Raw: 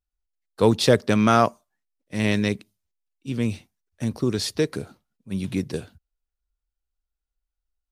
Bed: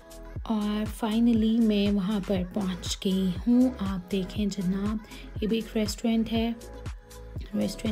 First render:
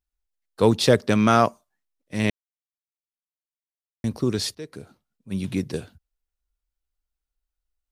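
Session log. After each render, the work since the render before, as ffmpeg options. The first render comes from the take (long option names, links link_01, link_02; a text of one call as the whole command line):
ffmpeg -i in.wav -filter_complex "[0:a]asplit=4[link_01][link_02][link_03][link_04];[link_01]atrim=end=2.3,asetpts=PTS-STARTPTS,afade=type=out:start_time=2.296:duration=0.004:curve=hsin[link_05];[link_02]atrim=start=2.3:end=4.04,asetpts=PTS-STARTPTS,volume=0[link_06];[link_03]atrim=start=4.04:end=4.55,asetpts=PTS-STARTPTS,afade=type=in:duration=0.004:curve=hsin,afade=type=out:start_time=0.506:duration=0.004:curve=hsin:silence=0.105925[link_07];[link_04]atrim=start=4.55,asetpts=PTS-STARTPTS,afade=type=in:duration=0.78:silence=0.105925[link_08];[link_05][link_06][link_07][link_08]concat=n=4:v=0:a=1" out.wav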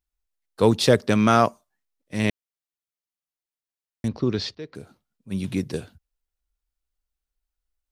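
ffmpeg -i in.wav -filter_complex "[0:a]asettb=1/sr,asplit=3[link_01][link_02][link_03];[link_01]atrim=end=4.084[link_04];[link_02]atrim=start=4.08:end=4.75,asetpts=PTS-STARTPTS,afade=type=in:duration=0.004:curve=qsin,afade=type=out:start_time=0.666:duration=0.004:curve=qsin,lowpass=frequency=4800:width=0.5412,lowpass=frequency=4800:width=1.3066[link_05];[link_03]atrim=start=4.746[link_06];[link_04][link_05]acrossfade=duration=0.004:curve1=hsin:curve2=qsin[link_07];[link_07][link_06]acrossfade=duration=0.004:curve1=qsin:curve2=hsin" out.wav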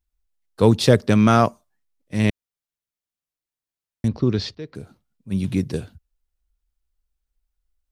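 ffmpeg -i in.wav -af "lowshelf=frequency=200:gain=8.5" out.wav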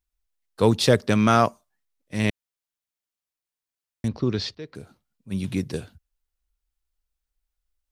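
ffmpeg -i in.wav -af "lowshelf=frequency=460:gain=-5.5" out.wav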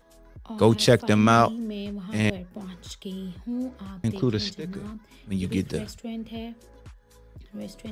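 ffmpeg -i in.wav -i bed.wav -filter_complex "[1:a]volume=-9dB[link_01];[0:a][link_01]amix=inputs=2:normalize=0" out.wav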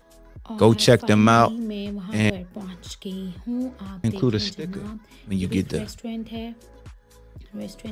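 ffmpeg -i in.wav -af "volume=3dB,alimiter=limit=-2dB:level=0:latency=1" out.wav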